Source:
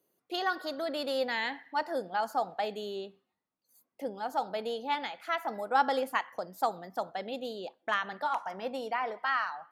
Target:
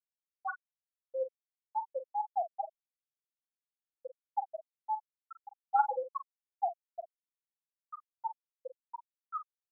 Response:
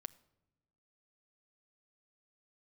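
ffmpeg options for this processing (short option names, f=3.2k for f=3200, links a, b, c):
-filter_complex "[0:a]lowpass=3.4k,afftfilt=real='re*gte(hypot(re,im),0.355)':imag='im*gte(hypot(re,im),0.355)':win_size=1024:overlap=0.75,asplit=2[a][b];[b]adelay=44,volume=-10.5dB[c];[a][c]amix=inputs=2:normalize=0"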